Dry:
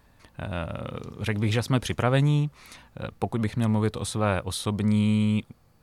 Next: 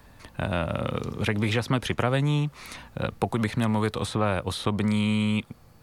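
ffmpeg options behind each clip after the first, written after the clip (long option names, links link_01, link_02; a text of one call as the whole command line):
ffmpeg -i in.wav -filter_complex "[0:a]acrossover=split=160|730|3300[link_01][link_02][link_03][link_04];[link_01]acompressor=threshold=-39dB:ratio=4[link_05];[link_02]acompressor=threshold=-33dB:ratio=4[link_06];[link_03]acompressor=threshold=-35dB:ratio=4[link_07];[link_04]acompressor=threshold=-49dB:ratio=4[link_08];[link_05][link_06][link_07][link_08]amix=inputs=4:normalize=0,volume=7dB" out.wav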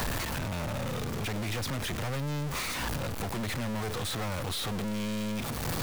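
ffmpeg -i in.wav -af "aeval=exprs='val(0)+0.5*0.0531*sgn(val(0))':channel_layout=same,aeval=exprs='(tanh(25.1*val(0)+0.5)-tanh(0.5))/25.1':channel_layout=same,alimiter=level_in=7dB:limit=-24dB:level=0:latency=1:release=193,volume=-7dB,volume=3dB" out.wav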